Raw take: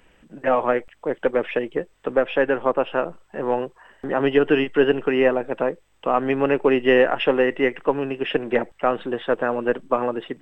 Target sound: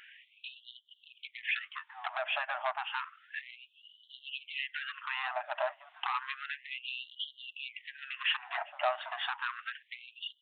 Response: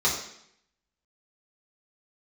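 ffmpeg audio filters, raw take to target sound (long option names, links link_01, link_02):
-filter_complex "[0:a]equalizer=frequency=170:width_type=o:width=0.79:gain=8.5,bandreject=frequency=50:width_type=h:width=6,bandreject=frequency=100:width_type=h:width=6,bandreject=frequency=150:width_type=h:width=6,bandreject=frequency=200:width_type=h:width=6,bandreject=frequency=250:width_type=h:width=6,bandreject=frequency=300:width_type=h:width=6,acompressor=threshold=-28dB:ratio=5,aresample=8000,asoftclip=type=tanh:threshold=-28dB,aresample=44100,asplit=2[link_01][link_02];[link_02]adelay=1458,volume=-14dB,highshelf=frequency=4000:gain=-32.8[link_03];[link_01][link_03]amix=inputs=2:normalize=0,afftfilt=real='re*gte(b*sr/1024,560*pow(2900/560,0.5+0.5*sin(2*PI*0.31*pts/sr)))':imag='im*gte(b*sr/1024,560*pow(2900/560,0.5+0.5*sin(2*PI*0.31*pts/sr)))':win_size=1024:overlap=0.75,volume=7.5dB"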